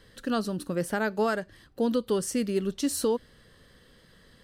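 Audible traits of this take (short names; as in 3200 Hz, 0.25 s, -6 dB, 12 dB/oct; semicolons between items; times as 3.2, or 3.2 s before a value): noise floor -58 dBFS; spectral tilt -4.5 dB/oct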